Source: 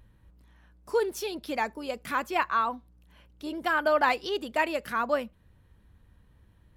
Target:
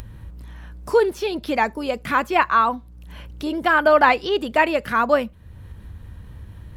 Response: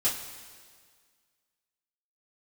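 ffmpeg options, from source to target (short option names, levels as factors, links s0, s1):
-filter_complex "[0:a]acrossover=split=3900[s0][s1];[s1]acompressor=threshold=0.00251:ratio=4:attack=1:release=60[s2];[s0][s2]amix=inputs=2:normalize=0,equalizer=f=88:t=o:w=1.4:g=7,asplit=2[s3][s4];[s4]acompressor=mode=upward:threshold=0.0282:ratio=2.5,volume=0.794[s5];[s3][s5]amix=inputs=2:normalize=0,volume=1.58"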